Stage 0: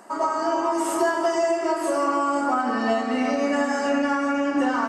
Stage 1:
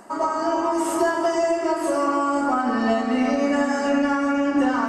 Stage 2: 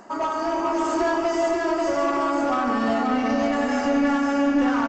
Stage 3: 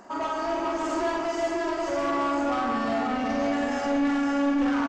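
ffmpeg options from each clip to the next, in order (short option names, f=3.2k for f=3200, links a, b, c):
-af "lowshelf=f=160:g=11.5,areverse,acompressor=mode=upward:threshold=-26dB:ratio=2.5,areverse"
-af "aresample=16000,asoftclip=type=tanh:threshold=-18dB,aresample=44100,aecho=1:1:536:0.668"
-filter_complex "[0:a]asoftclip=type=tanh:threshold=-20dB,asplit=2[a][b];[b]adelay=46,volume=-5dB[c];[a][c]amix=inputs=2:normalize=0,volume=-3dB"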